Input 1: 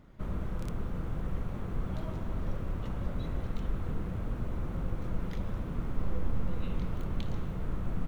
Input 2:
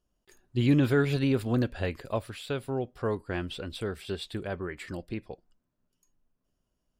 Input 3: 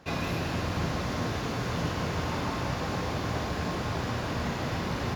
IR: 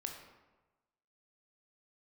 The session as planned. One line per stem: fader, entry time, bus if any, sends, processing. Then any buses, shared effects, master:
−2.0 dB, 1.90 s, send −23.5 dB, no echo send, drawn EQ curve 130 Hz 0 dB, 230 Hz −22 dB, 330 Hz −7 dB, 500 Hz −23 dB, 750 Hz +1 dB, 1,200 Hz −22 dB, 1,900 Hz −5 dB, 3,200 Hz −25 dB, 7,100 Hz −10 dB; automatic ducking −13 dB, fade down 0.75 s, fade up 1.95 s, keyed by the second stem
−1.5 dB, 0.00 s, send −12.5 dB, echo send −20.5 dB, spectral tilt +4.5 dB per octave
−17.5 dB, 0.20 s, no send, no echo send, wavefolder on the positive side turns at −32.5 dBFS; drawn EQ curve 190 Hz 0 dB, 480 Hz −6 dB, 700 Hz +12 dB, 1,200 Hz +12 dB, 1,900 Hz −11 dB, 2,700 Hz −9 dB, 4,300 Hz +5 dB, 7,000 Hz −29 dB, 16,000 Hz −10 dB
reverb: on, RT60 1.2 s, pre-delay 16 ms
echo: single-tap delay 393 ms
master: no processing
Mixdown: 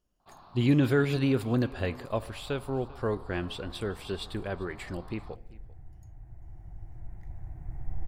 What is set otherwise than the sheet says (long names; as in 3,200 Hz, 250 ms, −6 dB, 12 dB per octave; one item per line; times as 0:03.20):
stem 2: missing spectral tilt +4.5 dB per octave
stem 3 −17.5 dB → −25.0 dB